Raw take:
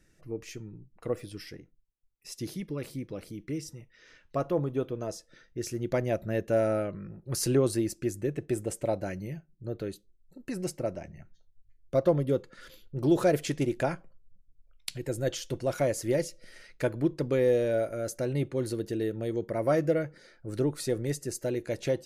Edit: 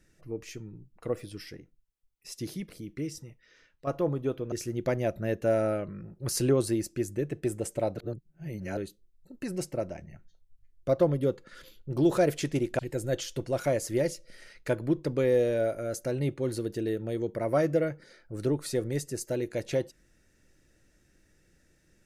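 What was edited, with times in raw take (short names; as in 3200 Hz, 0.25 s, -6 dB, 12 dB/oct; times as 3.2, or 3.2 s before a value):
2.7–3.21 cut
3.71–4.38 fade out, to -10.5 dB
5.03–5.58 cut
9.03–9.83 reverse
13.85–14.93 cut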